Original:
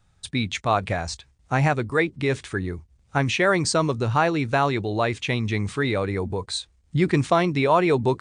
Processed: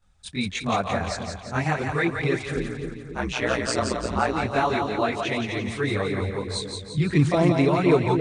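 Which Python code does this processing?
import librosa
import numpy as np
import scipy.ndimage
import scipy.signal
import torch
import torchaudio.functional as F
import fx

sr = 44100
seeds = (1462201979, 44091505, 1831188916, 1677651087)

y = fx.chorus_voices(x, sr, voices=4, hz=1.5, base_ms=23, depth_ms=3.0, mix_pct=70)
y = fx.ring_mod(y, sr, carrier_hz=61.0, at=(2.56, 4.33))
y = fx.echo_split(y, sr, split_hz=500.0, low_ms=270, high_ms=172, feedback_pct=52, wet_db=-5.0)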